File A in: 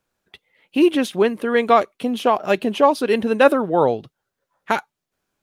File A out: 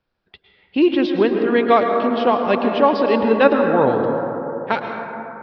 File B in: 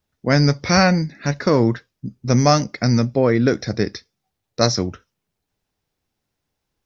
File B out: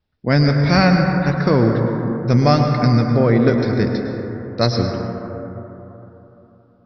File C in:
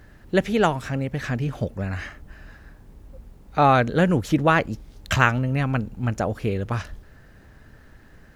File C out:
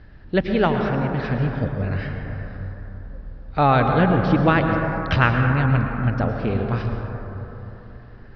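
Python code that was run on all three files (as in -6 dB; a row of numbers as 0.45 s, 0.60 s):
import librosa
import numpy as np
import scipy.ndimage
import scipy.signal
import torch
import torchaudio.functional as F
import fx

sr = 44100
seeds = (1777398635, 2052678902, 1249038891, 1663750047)

y = scipy.signal.sosfilt(scipy.signal.butter(12, 5200.0, 'lowpass', fs=sr, output='sos'), x)
y = fx.low_shelf(y, sr, hz=130.0, db=6.5)
y = fx.rev_plate(y, sr, seeds[0], rt60_s=3.5, hf_ratio=0.25, predelay_ms=95, drr_db=3.0)
y = y * librosa.db_to_amplitude(-1.0)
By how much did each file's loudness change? +1.5 LU, +1.5 LU, +2.0 LU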